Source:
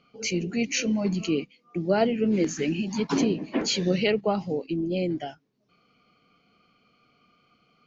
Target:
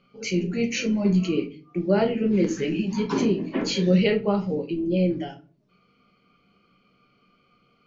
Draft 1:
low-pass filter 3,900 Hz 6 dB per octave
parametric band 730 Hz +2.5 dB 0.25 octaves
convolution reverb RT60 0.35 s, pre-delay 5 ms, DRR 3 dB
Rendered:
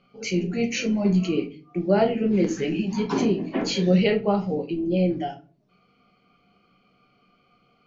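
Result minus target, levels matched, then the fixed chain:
1,000 Hz band +3.5 dB
low-pass filter 3,900 Hz 6 dB per octave
parametric band 730 Hz −7 dB 0.25 octaves
convolution reverb RT60 0.35 s, pre-delay 5 ms, DRR 3 dB

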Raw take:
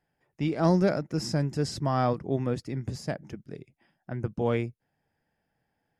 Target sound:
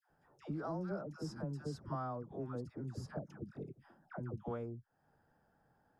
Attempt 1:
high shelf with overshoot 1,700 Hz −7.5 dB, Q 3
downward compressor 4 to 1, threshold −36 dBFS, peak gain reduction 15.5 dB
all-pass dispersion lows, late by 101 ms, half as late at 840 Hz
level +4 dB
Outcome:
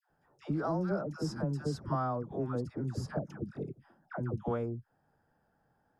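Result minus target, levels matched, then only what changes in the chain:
downward compressor: peak gain reduction −8 dB
change: downward compressor 4 to 1, threshold −46.5 dBFS, peak gain reduction 23.5 dB

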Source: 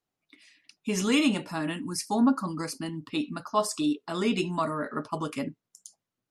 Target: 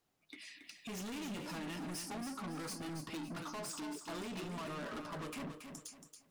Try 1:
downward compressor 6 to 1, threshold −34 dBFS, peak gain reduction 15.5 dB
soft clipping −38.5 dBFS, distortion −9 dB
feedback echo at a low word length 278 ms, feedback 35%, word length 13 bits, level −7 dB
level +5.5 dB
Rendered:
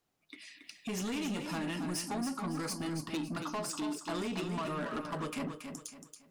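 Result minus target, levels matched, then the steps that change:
soft clipping: distortion −5 dB
change: soft clipping −47.5 dBFS, distortion −4 dB

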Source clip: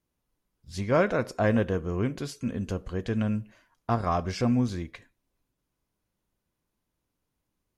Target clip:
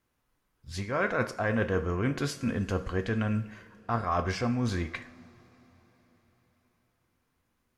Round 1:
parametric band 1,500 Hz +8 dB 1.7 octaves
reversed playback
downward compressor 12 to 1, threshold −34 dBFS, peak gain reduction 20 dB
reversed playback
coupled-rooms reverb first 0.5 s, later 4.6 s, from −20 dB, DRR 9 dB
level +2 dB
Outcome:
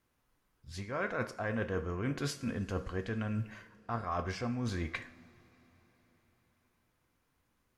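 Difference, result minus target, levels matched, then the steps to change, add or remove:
downward compressor: peak gain reduction +7 dB
change: downward compressor 12 to 1, threshold −26.5 dBFS, peak gain reduction 13 dB

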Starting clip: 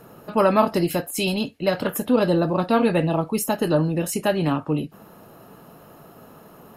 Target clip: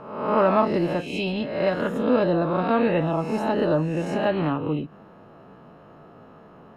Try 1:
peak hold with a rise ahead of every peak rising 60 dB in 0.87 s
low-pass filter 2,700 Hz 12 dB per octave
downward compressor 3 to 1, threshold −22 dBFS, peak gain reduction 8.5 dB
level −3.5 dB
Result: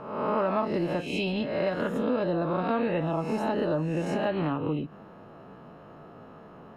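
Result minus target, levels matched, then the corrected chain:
downward compressor: peak gain reduction +8.5 dB
peak hold with a rise ahead of every peak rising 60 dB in 0.87 s
low-pass filter 2,700 Hz 12 dB per octave
level −3.5 dB

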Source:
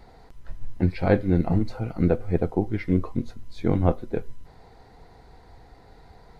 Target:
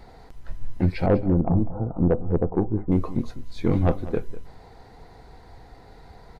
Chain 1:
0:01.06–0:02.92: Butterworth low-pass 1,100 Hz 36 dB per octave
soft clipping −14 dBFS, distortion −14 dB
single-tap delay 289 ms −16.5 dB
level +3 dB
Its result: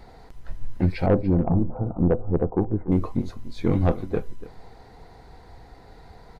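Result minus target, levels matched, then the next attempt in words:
echo 92 ms late
0:01.06–0:02.92: Butterworth low-pass 1,100 Hz 36 dB per octave
soft clipping −14 dBFS, distortion −14 dB
single-tap delay 197 ms −16.5 dB
level +3 dB

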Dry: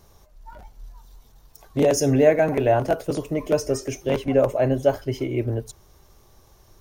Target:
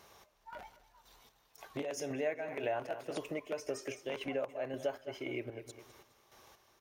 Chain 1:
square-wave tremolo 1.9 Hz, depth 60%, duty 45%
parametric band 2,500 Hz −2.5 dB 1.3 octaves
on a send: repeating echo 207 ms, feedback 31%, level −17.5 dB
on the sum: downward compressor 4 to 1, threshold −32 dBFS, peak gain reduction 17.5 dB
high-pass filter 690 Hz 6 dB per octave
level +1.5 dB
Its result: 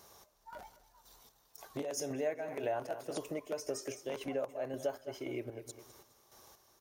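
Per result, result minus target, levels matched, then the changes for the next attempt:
8,000 Hz band +5.0 dB; 2,000 Hz band −4.5 dB
add after high-pass filter: high-shelf EQ 3,200 Hz −7 dB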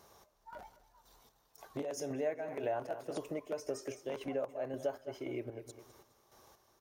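2,000 Hz band −6.0 dB
change: parametric band 2,500 Hz +6.5 dB 1.3 octaves

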